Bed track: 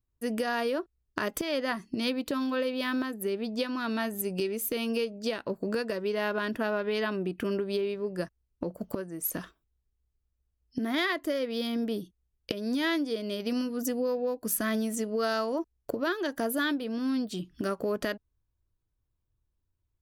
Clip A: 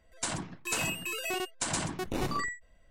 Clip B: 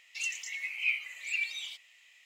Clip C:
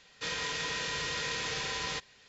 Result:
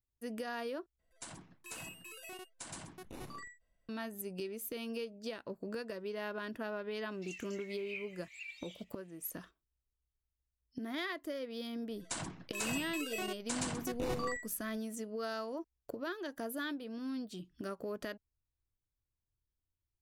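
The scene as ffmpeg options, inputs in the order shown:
-filter_complex "[1:a]asplit=2[s0][s1];[0:a]volume=0.299[s2];[s0]equalizer=f=11000:w=4.1:g=12.5[s3];[s2]asplit=2[s4][s5];[s4]atrim=end=0.994[s6];[s3]atrim=end=2.9,asetpts=PTS-STARTPTS,volume=0.168[s7];[s5]atrim=start=3.886[s8];[2:a]atrim=end=2.25,asetpts=PTS-STARTPTS,volume=0.178,afade=t=in:d=0.004:c=hsin,afade=t=out:st=2.246:d=0.004:c=hsin,adelay=7070[s9];[s1]atrim=end=2.9,asetpts=PTS-STARTPTS,volume=0.473,afade=t=in:d=0.004:c=hsin,afade=t=out:st=2.896:d=0.004:c=hsin,adelay=11880[s10];[s6][s7]acrossfade=d=0.004:c1=hsin:c2=hsin[s11];[s11][s8]acrossfade=d=0.004:c1=hsin:c2=hsin[s12];[s12][s9][s10]amix=inputs=3:normalize=0"

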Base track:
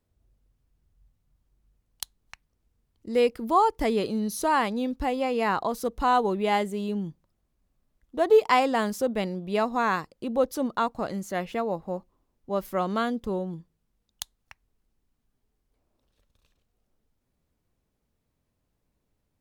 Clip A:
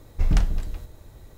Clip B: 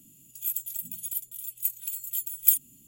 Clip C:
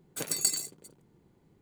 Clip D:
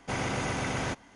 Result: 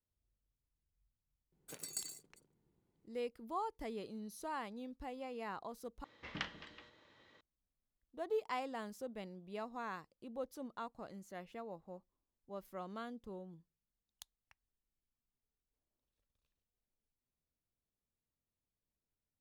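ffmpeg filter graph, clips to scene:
-filter_complex "[0:a]volume=0.112[s0];[1:a]highpass=350,equalizer=f=400:t=q:w=4:g=-7,equalizer=f=710:t=q:w=4:g=-9,equalizer=f=1100:t=q:w=4:g=3,equalizer=f=1900:t=q:w=4:g=8,equalizer=f=3100:t=q:w=4:g=9,lowpass=f=4900:w=0.5412,lowpass=f=4900:w=1.3066[s1];[s0]asplit=2[s2][s3];[s2]atrim=end=6.044[s4];[s1]atrim=end=1.37,asetpts=PTS-STARTPTS,volume=0.376[s5];[s3]atrim=start=7.406[s6];[3:a]atrim=end=1.61,asetpts=PTS-STARTPTS,volume=0.168,afade=t=in:d=0.004:c=hsin,afade=t=out:st=1.606:d=0.004:c=hsin,adelay=1520[s7];[s4][s5]acrossfade=d=0.004:c1=hsin:c2=hsin[s8];[s8][s6]acrossfade=d=0.004:c1=hsin:c2=hsin[s9];[s9][s7]amix=inputs=2:normalize=0"

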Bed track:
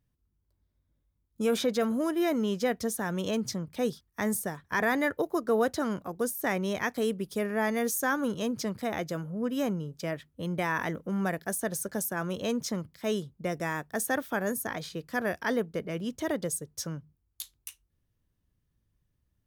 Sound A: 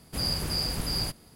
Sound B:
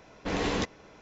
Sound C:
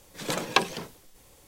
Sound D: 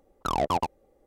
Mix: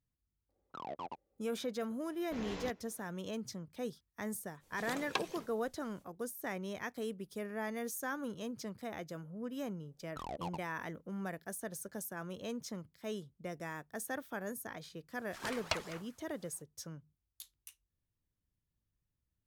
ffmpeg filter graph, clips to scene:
-filter_complex "[4:a]asplit=2[s0][s1];[3:a]asplit=2[s2][s3];[0:a]volume=0.282[s4];[s0]highpass=160,lowpass=3800[s5];[s3]aeval=exprs='val(0)*sin(2*PI*1200*n/s+1200*0.45/5.2*sin(2*PI*5.2*n/s))':c=same[s6];[s5]atrim=end=1.06,asetpts=PTS-STARTPTS,volume=0.133,afade=t=in:d=0.004:c=hsin,afade=t=out:st=1.056:d=0.004:c=hsin,adelay=490[s7];[2:a]atrim=end=1.01,asetpts=PTS-STARTPTS,volume=0.188,afade=t=in:d=0.004:c=hsin,afade=t=out:st=1.006:d=0.004:c=hsin,adelay=2060[s8];[s2]atrim=end=1.47,asetpts=PTS-STARTPTS,volume=0.211,afade=t=in:d=0.05,afade=t=out:st=1.42:d=0.05,adelay=4590[s9];[s1]atrim=end=1.06,asetpts=PTS-STARTPTS,volume=0.141,afade=t=in:d=0.004:c=hsin,afade=t=out:st=1.056:d=0.004:c=hsin,adelay=9910[s10];[s6]atrim=end=1.47,asetpts=PTS-STARTPTS,volume=0.299,afade=t=in:d=0.004:c=hsin,afade=t=out:st=1.466:d=0.004:c=hsin,adelay=15150[s11];[s4][s7][s8][s9][s10][s11]amix=inputs=6:normalize=0"

